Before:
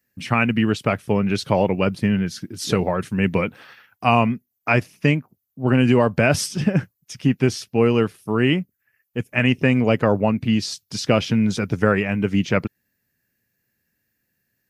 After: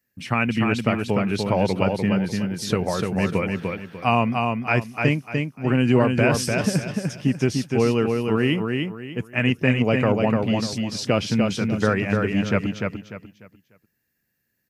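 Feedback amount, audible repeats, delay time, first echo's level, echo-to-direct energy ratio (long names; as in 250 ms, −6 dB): 30%, 3, 297 ms, −4.0 dB, −3.5 dB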